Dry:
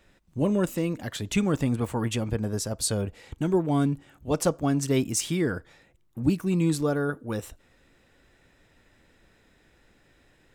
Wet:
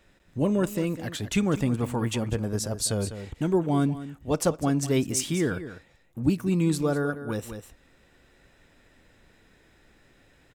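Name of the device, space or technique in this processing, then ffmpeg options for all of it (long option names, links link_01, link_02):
ducked delay: -filter_complex "[0:a]asplit=3[link_01][link_02][link_03];[link_02]adelay=200,volume=-2.5dB[link_04];[link_03]apad=whole_len=473647[link_05];[link_04][link_05]sidechaincompress=threshold=-32dB:ratio=6:attack=12:release=1250[link_06];[link_01][link_06]amix=inputs=2:normalize=0"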